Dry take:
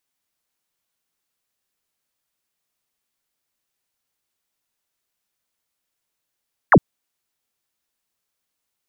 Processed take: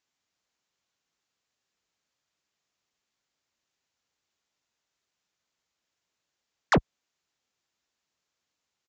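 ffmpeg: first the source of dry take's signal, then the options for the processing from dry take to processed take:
-f lavfi -i "aevalsrc='0.473*clip(t/0.002,0,1)*clip((0.06-t)/0.002,0,1)*sin(2*PI*2100*0.06/log(110/2100)*(exp(log(110/2100)*t/0.06)-1))':duration=0.06:sample_rate=44100"
-af "highpass=45,aresample=16000,asoftclip=type=tanh:threshold=-17.5dB,aresample=44100"

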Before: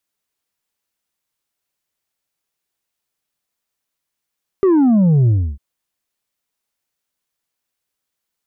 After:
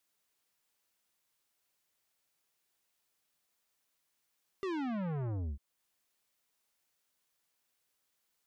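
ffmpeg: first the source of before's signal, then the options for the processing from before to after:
-f lavfi -i "aevalsrc='0.316*clip((0.95-t)/0.3,0,1)*tanh(1.58*sin(2*PI*400*0.95/log(65/400)*(exp(log(65/400)*t/0.95)-1)))/tanh(1.58)':duration=0.95:sample_rate=44100"
-af "lowshelf=frequency=240:gain=-4.5,asoftclip=type=tanh:threshold=-25dB,alimiter=level_in=11dB:limit=-24dB:level=0:latency=1:release=388,volume=-11dB"

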